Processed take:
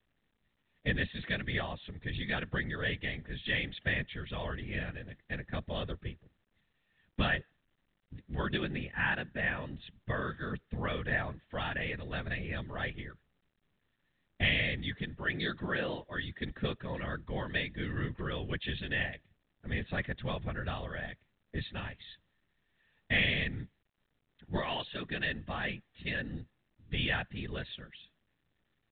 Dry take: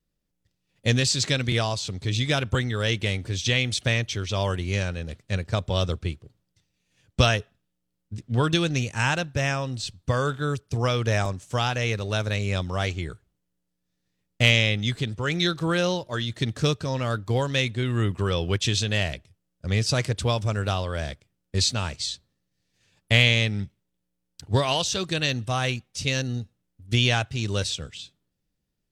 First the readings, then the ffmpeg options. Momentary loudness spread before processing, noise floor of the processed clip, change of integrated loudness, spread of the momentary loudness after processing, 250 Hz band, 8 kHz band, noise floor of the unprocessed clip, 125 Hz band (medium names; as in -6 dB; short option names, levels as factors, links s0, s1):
10 LU, -79 dBFS, -10.5 dB, 11 LU, -9.5 dB, under -40 dB, -79 dBFS, -14.0 dB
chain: -af "afftfilt=real='hypot(re,im)*cos(2*PI*random(0))':imag='hypot(re,im)*sin(2*PI*random(1))':win_size=512:overlap=0.75,equalizer=f=1800:w=5.2:g=14,volume=0.501" -ar 8000 -c:a pcm_mulaw